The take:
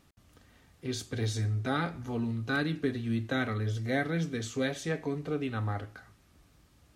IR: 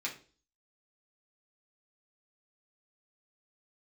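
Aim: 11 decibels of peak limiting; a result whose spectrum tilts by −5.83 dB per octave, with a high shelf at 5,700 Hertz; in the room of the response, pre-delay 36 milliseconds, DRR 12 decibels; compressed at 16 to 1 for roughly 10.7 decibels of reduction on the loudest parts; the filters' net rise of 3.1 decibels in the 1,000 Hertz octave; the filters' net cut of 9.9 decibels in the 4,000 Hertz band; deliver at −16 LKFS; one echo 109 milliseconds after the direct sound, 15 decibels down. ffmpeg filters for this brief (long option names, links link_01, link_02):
-filter_complex "[0:a]equalizer=frequency=1000:width_type=o:gain=5.5,equalizer=frequency=4000:width_type=o:gain=-9,highshelf=frequency=5700:gain=-8,acompressor=threshold=-34dB:ratio=16,alimiter=level_in=10.5dB:limit=-24dB:level=0:latency=1,volume=-10.5dB,aecho=1:1:109:0.178,asplit=2[link_01][link_02];[1:a]atrim=start_sample=2205,adelay=36[link_03];[link_02][link_03]afir=irnorm=-1:irlink=0,volume=-15dB[link_04];[link_01][link_04]amix=inputs=2:normalize=0,volume=27dB"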